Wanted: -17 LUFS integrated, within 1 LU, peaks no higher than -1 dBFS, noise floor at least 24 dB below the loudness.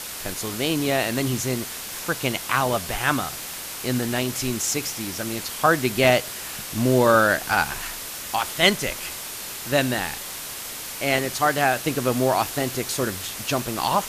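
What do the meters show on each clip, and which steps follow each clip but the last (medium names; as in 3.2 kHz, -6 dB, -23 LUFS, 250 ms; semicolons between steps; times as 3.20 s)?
noise floor -34 dBFS; noise floor target -48 dBFS; loudness -23.5 LUFS; peak level -3.5 dBFS; loudness target -17.0 LUFS
-> noise reduction 14 dB, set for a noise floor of -34 dBFS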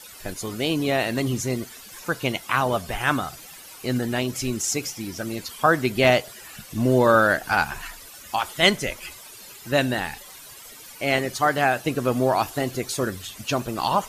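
noise floor -44 dBFS; noise floor target -48 dBFS
-> noise reduction 6 dB, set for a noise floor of -44 dBFS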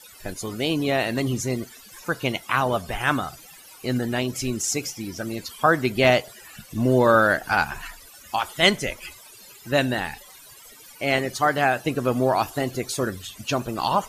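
noise floor -47 dBFS; noise floor target -48 dBFS
-> noise reduction 6 dB, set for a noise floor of -47 dBFS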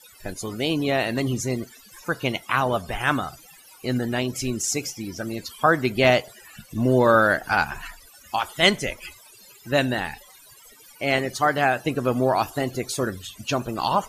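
noise floor -50 dBFS; loudness -23.5 LUFS; peak level -3.5 dBFS; loudness target -17.0 LUFS
-> trim +6.5 dB; peak limiter -1 dBFS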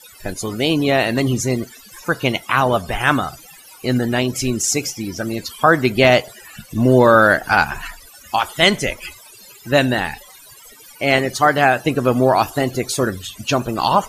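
loudness -17.5 LUFS; peak level -1.0 dBFS; noise floor -44 dBFS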